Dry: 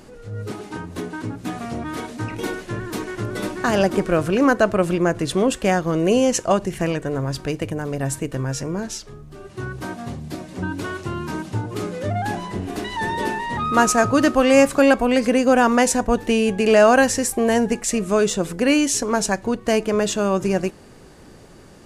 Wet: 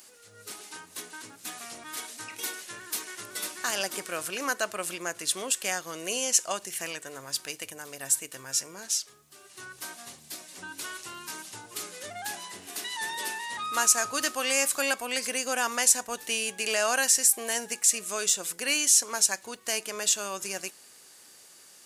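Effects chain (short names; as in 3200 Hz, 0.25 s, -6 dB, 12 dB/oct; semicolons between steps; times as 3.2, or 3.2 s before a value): differentiator; in parallel at +1 dB: limiter -18.5 dBFS, peak gain reduction 10 dB; on the sum: gain -1 dB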